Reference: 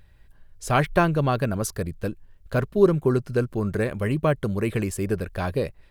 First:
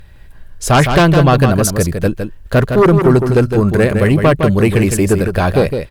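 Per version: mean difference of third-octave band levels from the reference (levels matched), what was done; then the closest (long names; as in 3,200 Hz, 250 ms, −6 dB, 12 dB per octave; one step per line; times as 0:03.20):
4.5 dB: in parallel at −4 dB: sine wavefolder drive 10 dB, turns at −6 dBFS
on the sum: single-tap delay 160 ms −7 dB
level +1.5 dB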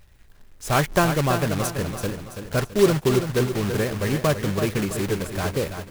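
9.5 dB: one scale factor per block 3 bits
on a send: repeating echo 332 ms, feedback 42%, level −8 dB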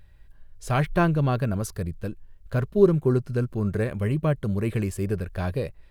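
2.5 dB: harmonic and percussive parts rebalanced percussive −6 dB
low-shelf EQ 130 Hz +3.5 dB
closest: third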